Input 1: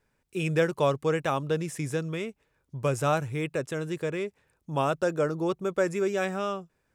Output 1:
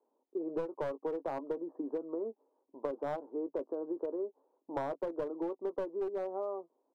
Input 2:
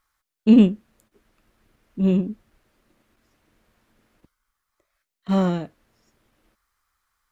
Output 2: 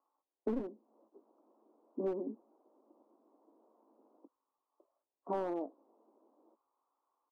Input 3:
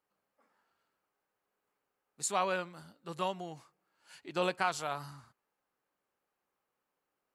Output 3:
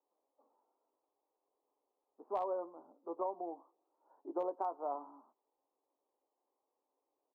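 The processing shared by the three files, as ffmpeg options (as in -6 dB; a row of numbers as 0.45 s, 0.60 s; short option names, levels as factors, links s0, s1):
-filter_complex "[0:a]asuperpass=centerf=520:order=12:qfactor=0.67,asplit=2[s0][s1];[s1]adelay=18,volume=0.251[s2];[s0][s2]amix=inputs=2:normalize=0,aeval=exprs='clip(val(0),-1,0.0631)':c=same,acompressor=threshold=0.02:ratio=12,volume=1.19"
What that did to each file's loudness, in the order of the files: -9.5 LU, -20.0 LU, -5.5 LU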